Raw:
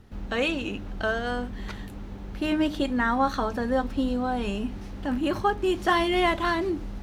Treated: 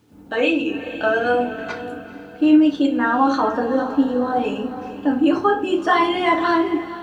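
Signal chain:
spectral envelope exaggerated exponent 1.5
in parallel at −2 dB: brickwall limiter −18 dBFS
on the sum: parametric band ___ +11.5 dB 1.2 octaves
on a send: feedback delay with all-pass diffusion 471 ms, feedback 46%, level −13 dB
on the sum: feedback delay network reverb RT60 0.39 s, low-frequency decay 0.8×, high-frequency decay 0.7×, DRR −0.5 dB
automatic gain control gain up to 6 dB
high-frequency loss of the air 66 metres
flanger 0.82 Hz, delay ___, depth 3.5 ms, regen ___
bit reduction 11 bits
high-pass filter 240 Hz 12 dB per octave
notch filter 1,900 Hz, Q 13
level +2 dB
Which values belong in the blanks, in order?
8,000 Hz, 9.5 ms, −69%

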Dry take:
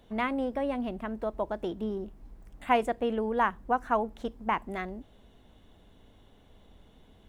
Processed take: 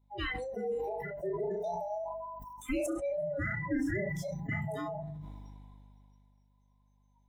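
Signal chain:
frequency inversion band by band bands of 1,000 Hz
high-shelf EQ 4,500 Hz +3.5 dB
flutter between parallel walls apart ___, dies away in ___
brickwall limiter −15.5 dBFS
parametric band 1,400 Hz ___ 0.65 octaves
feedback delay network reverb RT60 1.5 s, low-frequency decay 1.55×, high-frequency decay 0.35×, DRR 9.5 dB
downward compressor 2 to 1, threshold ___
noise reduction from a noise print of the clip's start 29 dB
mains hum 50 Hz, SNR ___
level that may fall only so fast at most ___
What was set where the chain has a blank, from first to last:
5.8 metres, 0.29 s, −3 dB, −34 dBFS, 30 dB, 20 dB per second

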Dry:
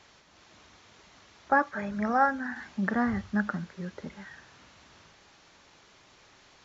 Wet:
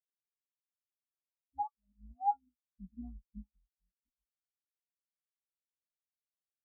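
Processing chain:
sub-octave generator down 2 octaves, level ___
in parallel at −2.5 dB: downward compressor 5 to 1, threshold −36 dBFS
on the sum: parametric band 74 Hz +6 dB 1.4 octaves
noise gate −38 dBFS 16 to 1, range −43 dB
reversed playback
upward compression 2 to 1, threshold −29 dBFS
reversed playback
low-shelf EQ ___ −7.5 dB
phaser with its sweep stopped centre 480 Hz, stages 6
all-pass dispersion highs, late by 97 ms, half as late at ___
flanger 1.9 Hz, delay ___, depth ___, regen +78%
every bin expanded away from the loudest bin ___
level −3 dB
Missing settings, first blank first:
+3 dB, 120 Hz, 560 Hz, 0.3 ms, 6.1 ms, 4 to 1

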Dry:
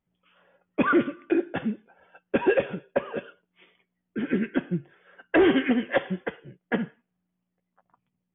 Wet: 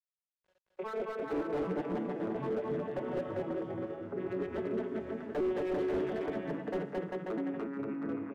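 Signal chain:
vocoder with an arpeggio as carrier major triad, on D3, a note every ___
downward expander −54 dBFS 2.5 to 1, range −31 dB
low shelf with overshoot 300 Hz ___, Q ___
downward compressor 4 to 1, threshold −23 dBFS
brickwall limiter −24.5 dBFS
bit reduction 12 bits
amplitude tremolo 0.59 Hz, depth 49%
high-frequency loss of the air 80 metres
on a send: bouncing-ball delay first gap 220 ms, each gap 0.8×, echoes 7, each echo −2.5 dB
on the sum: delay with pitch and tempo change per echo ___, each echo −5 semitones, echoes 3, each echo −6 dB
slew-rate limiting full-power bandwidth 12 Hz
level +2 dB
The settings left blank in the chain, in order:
415 ms, −12.5 dB, 3, 163 ms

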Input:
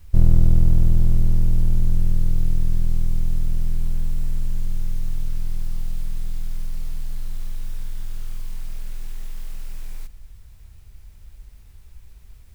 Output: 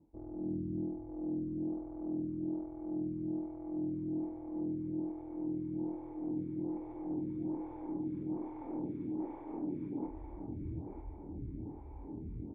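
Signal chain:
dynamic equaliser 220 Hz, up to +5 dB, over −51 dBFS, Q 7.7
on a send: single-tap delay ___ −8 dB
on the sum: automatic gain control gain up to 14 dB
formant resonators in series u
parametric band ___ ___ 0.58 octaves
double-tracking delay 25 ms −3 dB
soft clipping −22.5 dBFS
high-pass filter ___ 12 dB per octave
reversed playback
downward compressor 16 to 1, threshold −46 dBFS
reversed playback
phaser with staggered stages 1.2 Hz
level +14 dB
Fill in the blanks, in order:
945 ms, 310 Hz, +4 dB, 110 Hz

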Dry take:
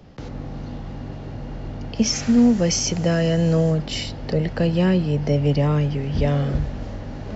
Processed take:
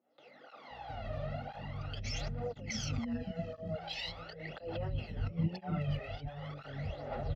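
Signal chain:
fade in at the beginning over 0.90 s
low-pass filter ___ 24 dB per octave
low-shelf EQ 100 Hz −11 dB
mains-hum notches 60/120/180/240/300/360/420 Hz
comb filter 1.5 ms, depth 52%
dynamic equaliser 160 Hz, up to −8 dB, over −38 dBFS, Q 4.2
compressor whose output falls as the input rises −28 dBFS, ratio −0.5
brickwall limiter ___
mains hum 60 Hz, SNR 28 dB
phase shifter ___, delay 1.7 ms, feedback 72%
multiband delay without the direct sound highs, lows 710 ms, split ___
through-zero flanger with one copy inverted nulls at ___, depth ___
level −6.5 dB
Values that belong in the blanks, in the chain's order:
4,100 Hz, −23 dBFS, 0.42 Hz, 360 Hz, 0.98 Hz, 7.1 ms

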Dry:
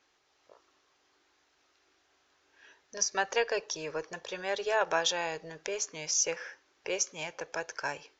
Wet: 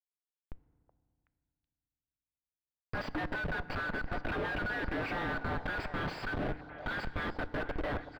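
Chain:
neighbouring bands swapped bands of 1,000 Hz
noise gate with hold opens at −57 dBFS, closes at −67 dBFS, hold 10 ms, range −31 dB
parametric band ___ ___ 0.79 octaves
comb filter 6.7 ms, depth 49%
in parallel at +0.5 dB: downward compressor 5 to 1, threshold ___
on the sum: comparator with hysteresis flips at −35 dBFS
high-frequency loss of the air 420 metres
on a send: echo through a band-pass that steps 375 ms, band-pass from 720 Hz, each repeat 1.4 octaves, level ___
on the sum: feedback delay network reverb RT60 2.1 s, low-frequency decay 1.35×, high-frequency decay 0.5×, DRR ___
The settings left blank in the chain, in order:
310 Hz, +5 dB, −39 dBFS, −8 dB, 15 dB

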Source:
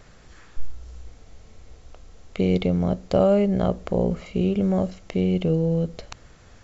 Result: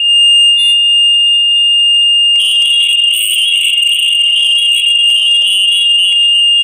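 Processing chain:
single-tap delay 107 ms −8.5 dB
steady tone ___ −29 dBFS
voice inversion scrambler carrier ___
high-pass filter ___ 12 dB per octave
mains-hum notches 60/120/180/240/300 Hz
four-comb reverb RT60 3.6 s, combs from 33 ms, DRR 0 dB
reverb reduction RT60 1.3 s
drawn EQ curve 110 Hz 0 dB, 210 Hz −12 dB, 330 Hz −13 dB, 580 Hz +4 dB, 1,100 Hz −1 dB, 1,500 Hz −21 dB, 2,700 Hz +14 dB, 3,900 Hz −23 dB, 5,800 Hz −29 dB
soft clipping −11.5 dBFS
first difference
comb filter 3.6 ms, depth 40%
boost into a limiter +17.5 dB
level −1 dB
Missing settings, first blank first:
680 Hz, 3,500 Hz, 49 Hz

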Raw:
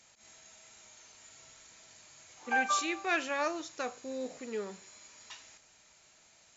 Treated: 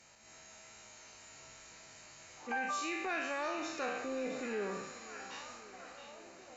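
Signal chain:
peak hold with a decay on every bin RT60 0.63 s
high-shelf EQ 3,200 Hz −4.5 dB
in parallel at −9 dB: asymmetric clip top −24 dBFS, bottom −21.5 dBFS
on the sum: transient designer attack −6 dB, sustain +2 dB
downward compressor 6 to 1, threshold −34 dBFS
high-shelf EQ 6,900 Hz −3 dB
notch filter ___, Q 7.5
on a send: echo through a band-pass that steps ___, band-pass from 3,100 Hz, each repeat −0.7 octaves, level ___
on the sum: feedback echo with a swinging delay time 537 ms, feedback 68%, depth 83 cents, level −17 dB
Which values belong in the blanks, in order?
3,400 Hz, 669 ms, −6.5 dB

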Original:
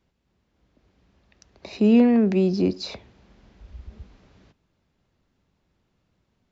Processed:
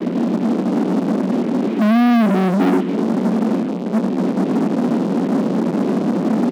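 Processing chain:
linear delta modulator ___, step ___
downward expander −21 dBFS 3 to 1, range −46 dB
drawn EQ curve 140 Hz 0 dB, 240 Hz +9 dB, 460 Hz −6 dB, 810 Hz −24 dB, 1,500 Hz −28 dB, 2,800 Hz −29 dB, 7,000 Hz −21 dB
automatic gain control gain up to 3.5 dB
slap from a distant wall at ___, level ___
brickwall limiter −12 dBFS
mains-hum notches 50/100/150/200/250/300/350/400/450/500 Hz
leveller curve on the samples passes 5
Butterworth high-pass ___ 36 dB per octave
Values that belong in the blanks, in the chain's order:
16 kbit/s, −18.5 dBFS, 41 metres, −22 dB, 190 Hz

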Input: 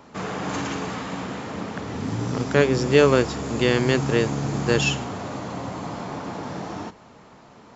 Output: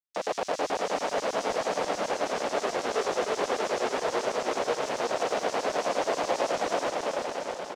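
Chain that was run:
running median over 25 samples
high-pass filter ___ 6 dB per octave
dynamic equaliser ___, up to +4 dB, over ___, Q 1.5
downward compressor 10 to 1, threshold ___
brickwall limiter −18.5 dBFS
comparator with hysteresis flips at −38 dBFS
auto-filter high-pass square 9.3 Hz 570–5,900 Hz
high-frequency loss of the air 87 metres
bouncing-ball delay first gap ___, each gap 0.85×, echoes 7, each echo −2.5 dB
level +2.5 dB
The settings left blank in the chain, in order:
91 Hz, 220 Hz, −36 dBFS, −22 dBFS, 340 ms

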